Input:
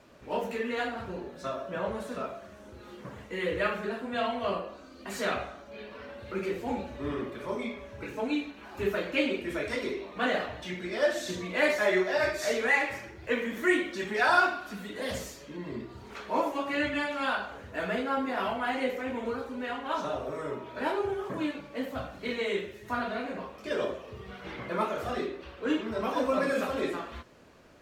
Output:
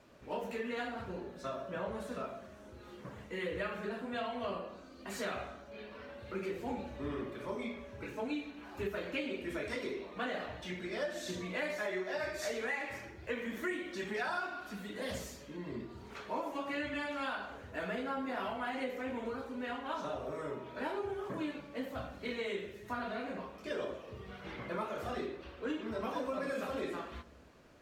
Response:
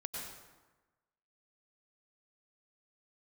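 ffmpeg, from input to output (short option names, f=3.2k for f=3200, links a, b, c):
-filter_complex "[0:a]acompressor=threshold=-29dB:ratio=6,asplit=2[a][b];[1:a]atrim=start_sample=2205,lowshelf=f=400:g=10.5[c];[b][c]afir=irnorm=-1:irlink=0,volume=-18.5dB[d];[a][d]amix=inputs=2:normalize=0,volume=-5.5dB"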